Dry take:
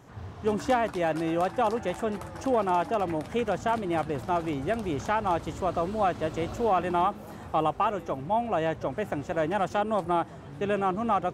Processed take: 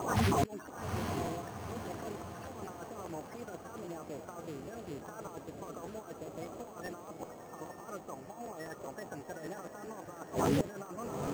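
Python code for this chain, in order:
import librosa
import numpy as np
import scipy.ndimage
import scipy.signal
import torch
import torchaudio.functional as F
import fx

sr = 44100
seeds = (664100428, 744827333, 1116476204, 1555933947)

p1 = fx.spec_quant(x, sr, step_db=30)
p2 = scipy.signal.sosfilt(scipy.signal.butter(2, 55.0, 'highpass', fs=sr, output='sos'), p1)
p3 = fx.low_shelf(p2, sr, hz=160.0, db=-11.5)
p4 = fx.over_compress(p3, sr, threshold_db=-31.0, ratio=-0.5)
p5 = fx.gate_flip(p4, sr, shuts_db=-32.0, range_db=-28)
p6 = p5 + fx.echo_diffused(p5, sr, ms=832, feedback_pct=49, wet_db=-6.5, dry=0)
p7 = np.repeat(scipy.signal.resample_poly(p6, 1, 6), 6)[:len(p6)]
p8 = fx.buffer_crackle(p7, sr, first_s=0.65, period_s=0.2, block=512, kind='repeat')
p9 = fx.doppler_dist(p8, sr, depth_ms=0.27)
y = F.gain(torch.from_numpy(p9), 15.5).numpy()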